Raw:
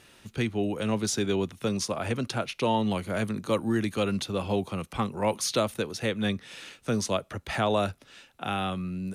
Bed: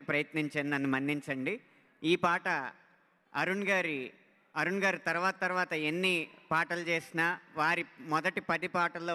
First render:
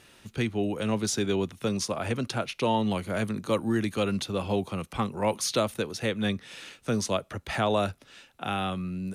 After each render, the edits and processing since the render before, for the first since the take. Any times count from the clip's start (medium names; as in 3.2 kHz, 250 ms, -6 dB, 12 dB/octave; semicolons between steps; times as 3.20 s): no audible change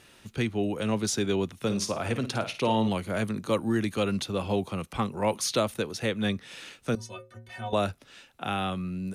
1.59–2.89 s: flutter echo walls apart 9.3 m, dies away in 0.3 s; 6.95–7.73 s: inharmonic resonator 110 Hz, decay 0.47 s, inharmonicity 0.03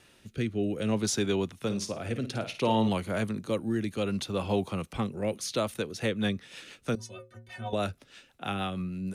rotary cabinet horn 0.6 Hz, later 6.3 Hz, at 5.41 s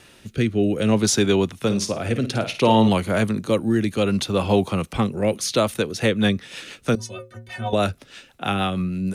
trim +9.5 dB